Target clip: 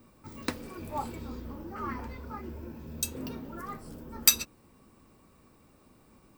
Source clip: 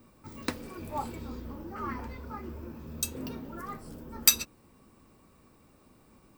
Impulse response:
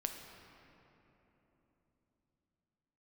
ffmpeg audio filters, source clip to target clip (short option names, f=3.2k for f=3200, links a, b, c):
-filter_complex "[0:a]asettb=1/sr,asplit=3[a][b][c];[a]atrim=end=2.414[d];[b]atrim=start=2.41:end=3.06,asetpts=PTS-STARTPTS,afade=t=in:d=0.004:c=qsin,afade=t=out:st=0.646:d=0.004:c=qsin,bandreject=f=1.2k:w=6.2[e];[c]atrim=start=3.056[f];[d][e]acrossfade=d=0.004:c1=hsin:c2=qsin[g];[g][f]acrossfade=d=0.004:c1=qsin:c2=hsin"